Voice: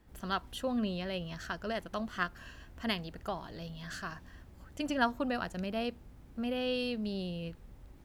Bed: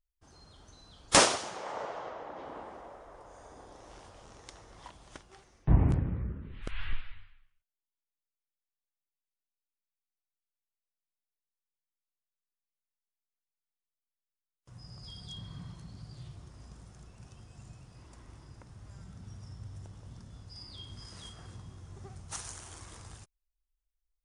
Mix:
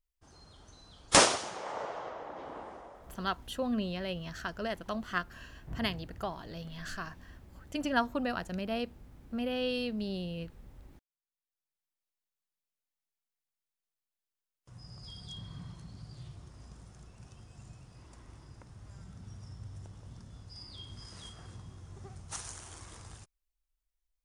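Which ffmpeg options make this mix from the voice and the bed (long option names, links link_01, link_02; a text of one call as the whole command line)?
ffmpeg -i stem1.wav -i stem2.wav -filter_complex "[0:a]adelay=2950,volume=0.5dB[link_01];[1:a]volume=18.5dB,afade=type=out:start_time=2.71:duration=0.73:silence=0.112202,afade=type=in:start_time=11.11:duration=0.77:silence=0.11885[link_02];[link_01][link_02]amix=inputs=2:normalize=0" out.wav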